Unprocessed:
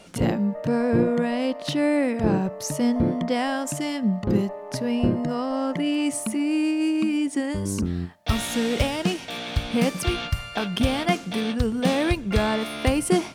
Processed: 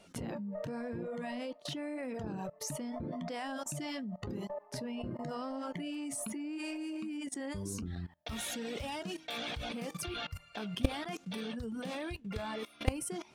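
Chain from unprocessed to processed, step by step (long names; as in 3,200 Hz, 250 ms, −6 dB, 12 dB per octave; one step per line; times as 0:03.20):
flanger 0.88 Hz, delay 10 ms, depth 5.8 ms, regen +68%
reverb reduction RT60 0.87 s
output level in coarse steps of 21 dB
0:08.81–0:10.84: hum removal 159.3 Hz, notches 8
level +3 dB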